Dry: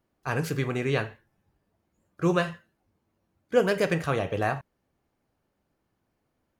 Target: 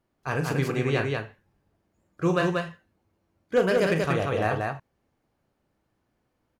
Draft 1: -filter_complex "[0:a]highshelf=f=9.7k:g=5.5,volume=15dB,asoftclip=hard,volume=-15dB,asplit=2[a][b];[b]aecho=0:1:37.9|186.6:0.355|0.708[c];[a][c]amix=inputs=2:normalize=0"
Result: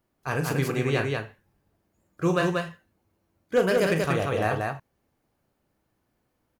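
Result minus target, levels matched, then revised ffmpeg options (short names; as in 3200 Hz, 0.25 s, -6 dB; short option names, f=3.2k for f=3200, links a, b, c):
8000 Hz band +3.5 dB
-filter_complex "[0:a]highshelf=f=9.7k:g=-6,volume=15dB,asoftclip=hard,volume=-15dB,asplit=2[a][b];[b]aecho=0:1:37.9|186.6:0.355|0.708[c];[a][c]amix=inputs=2:normalize=0"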